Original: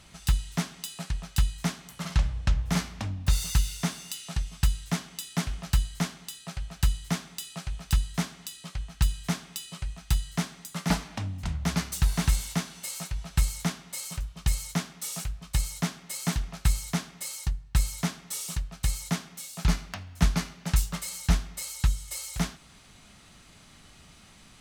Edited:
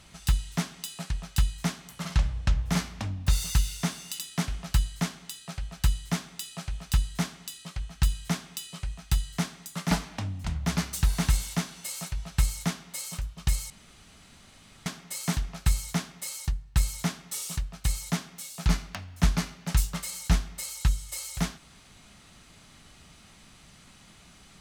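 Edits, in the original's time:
0:04.19–0:05.18: remove
0:14.69–0:15.85: fill with room tone

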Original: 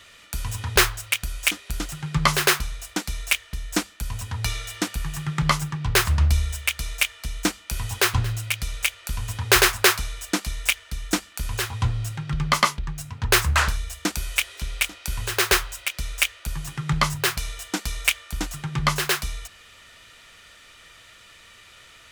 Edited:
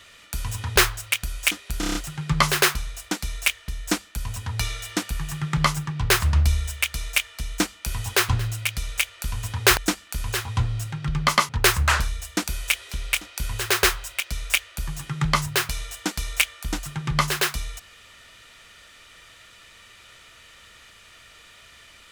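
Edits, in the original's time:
0:01.80: stutter 0.03 s, 6 plays
0:09.62–0:11.02: remove
0:12.74–0:13.17: remove

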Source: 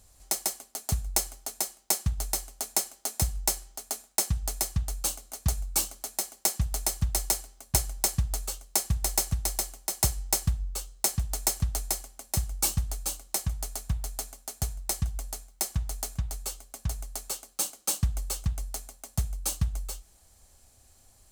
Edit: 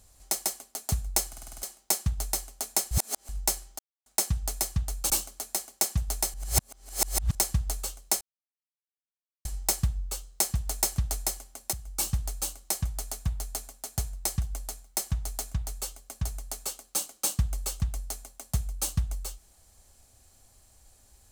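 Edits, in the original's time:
0:01.28: stutter in place 0.05 s, 7 plays
0:02.91–0:03.29: reverse
0:03.79–0:04.06: silence
0:05.10–0:05.74: remove
0:06.98–0:07.99: reverse
0:08.85–0:10.09: silence
0:12.37–0:12.81: fade in, from −13 dB

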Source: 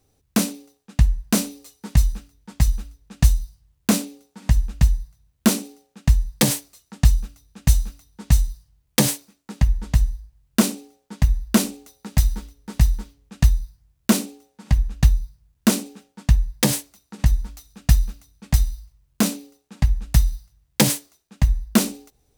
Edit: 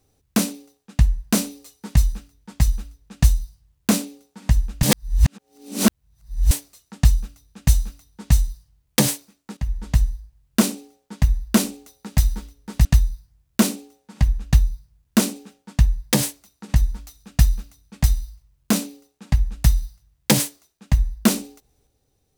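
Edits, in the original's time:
0:04.83–0:06.51: reverse
0:09.57–0:09.90: fade in, from −13 dB
0:12.85–0:13.35: remove

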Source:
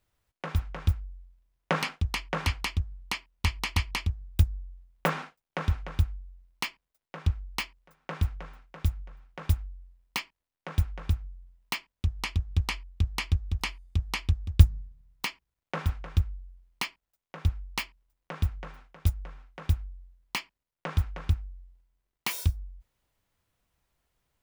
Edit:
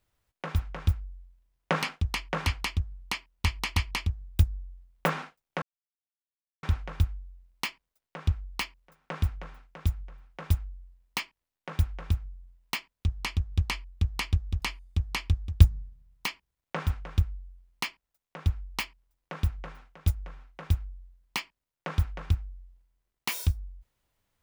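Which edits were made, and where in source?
0:05.62: splice in silence 1.01 s

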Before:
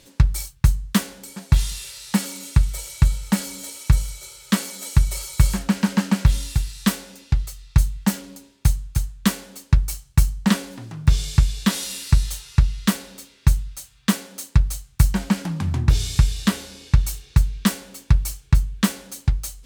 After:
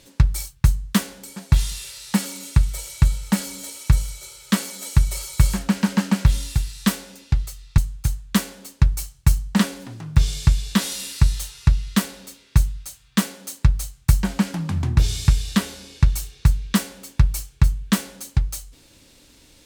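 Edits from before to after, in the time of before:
0:07.78–0:08.69: remove

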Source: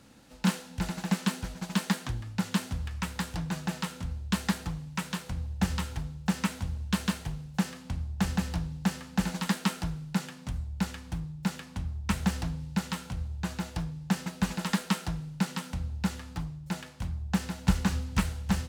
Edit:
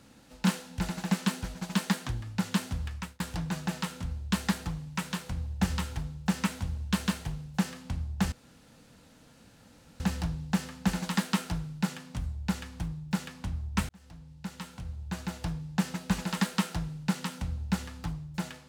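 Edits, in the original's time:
0:02.89–0:03.20: fade out
0:08.32: splice in room tone 1.68 s
0:12.21–0:13.87: fade in

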